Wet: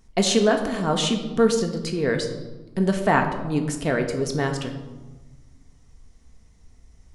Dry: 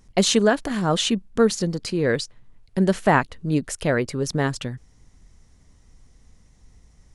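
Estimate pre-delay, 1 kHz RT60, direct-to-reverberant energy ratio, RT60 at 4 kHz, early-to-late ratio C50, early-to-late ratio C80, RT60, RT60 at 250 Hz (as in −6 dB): 3 ms, 1.2 s, 3.5 dB, 0.75 s, 8.0 dB, 9.5 dB, 1.3 s, 1.7 s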